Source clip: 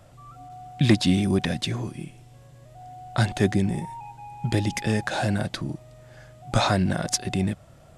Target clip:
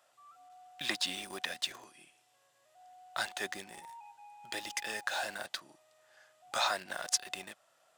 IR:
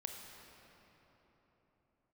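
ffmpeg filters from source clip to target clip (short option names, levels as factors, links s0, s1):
-filter_complex "[0:a]highpass=900,bandreject=f=2200:w=16,asplit=2[s0][s1];[s1]acrusher=bits=5:mix=0:aa=0.000001,volume=0.531[s2];[s0][s2]amix=inputs=2:normalize=0,volume=0.376"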